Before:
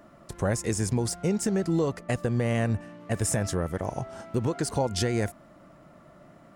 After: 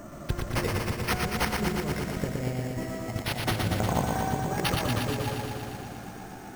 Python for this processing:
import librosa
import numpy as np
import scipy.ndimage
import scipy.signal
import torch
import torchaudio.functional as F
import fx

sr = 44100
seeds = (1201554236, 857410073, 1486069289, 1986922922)

p1 = fx.pitch_glide(x, sr, semitones=4.0, runs='starting unshifted')
p2 = fx.low_shelf(p1, sr, hz=160.0, db=8.0)
p3 = np.clip(10.0 ** (27.5 / 20.0) * p2, -1.0, 1.0) / 10.0 ** (27.5 / 20.0)
p4 = p2 + F.gain(torch.from_numpy(p3), -5.0).numpy()
p5 = fx.over_compress(p4, sr, threshold_db=-28.0, ratio=-0.5)
p6 = p5 + fx.echo_single(p5, sr, ms=85, db=-14.5, dry=0)
p7 = np.repeat(p6[::6], 6)[:len(p6)]
p8 = fx.echo_crushed(p7, sr, ms=118, feedback_pct=80, bits=9, wet_db=-3.5)
y = F.gain(torch.from_numpy(p8), -2.0).numpy()